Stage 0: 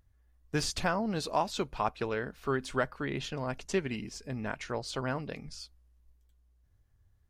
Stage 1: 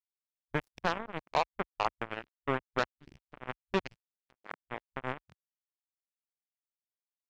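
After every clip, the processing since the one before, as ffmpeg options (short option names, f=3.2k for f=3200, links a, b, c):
-af "equalizer=f=4.5k:w=0.65:g=-5,acrusher=bits=3:mix=0:aa=0.5,afwtdn=0.00562"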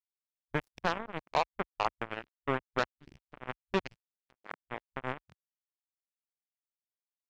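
-af anull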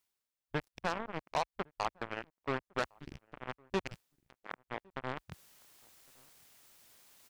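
-filter_complex "[0:a]areverse,acompressor=mode=upward:threshold=-36dB:ratio=2.5,areverse,asoftclip=type=tanh:threshold=-23.5dB,asplit=2[a][b];[b]adelay=1108,volume=-28dB,highshelf=f=4k:g=-24.9[c];[a][c]amix=inputs=2:normalize=0,volume=1dB"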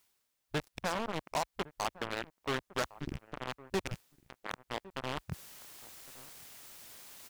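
-af "volume=35.5dB,asoftclip=hard,volume=-35.5dB,volume=10dB"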